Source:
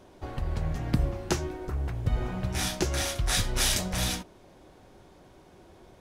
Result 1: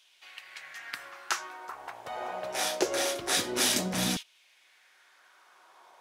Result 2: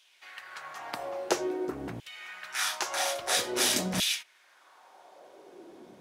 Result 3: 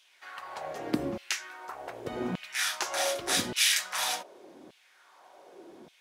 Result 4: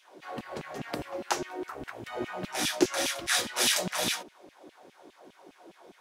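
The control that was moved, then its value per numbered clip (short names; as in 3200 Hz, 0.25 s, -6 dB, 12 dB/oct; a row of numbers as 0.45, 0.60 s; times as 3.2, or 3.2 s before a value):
LFO high-pass, rate: 0.24, 0.5, 0.85, 4.9 Hz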